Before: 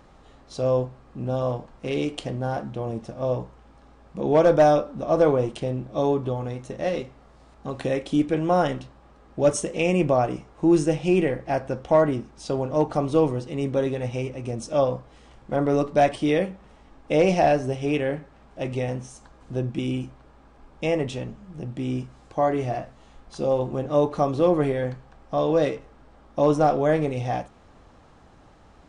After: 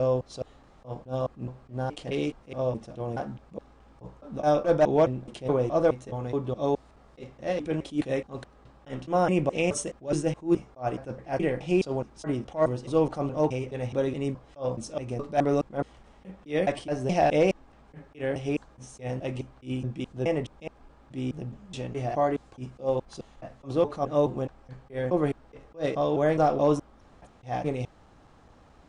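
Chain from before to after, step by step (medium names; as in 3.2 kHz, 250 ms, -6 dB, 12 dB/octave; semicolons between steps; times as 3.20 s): slices played last to first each 211 ms, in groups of 4; attacks held to a fixed rise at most 260 dB/s; trim -3 dB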